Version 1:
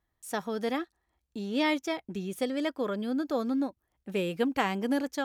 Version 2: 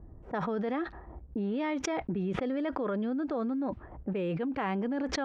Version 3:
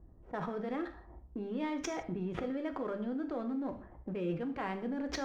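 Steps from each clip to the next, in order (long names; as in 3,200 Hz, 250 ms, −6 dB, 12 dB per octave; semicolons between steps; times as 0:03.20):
low-pass filter 1,900 Hz 12 dB per octave; low-pass that shuts in the quiet parts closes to 400 Hz, open at −27.5 dBFS; envelope flattener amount 100%; level −7.5 dB
in parallel at −6 dB: slack as between gear wheels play −30.5 dBFS; on the sum: reverb whose tail is shaped and stops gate 190 ms falling, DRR 6 dB; level −8.5 dB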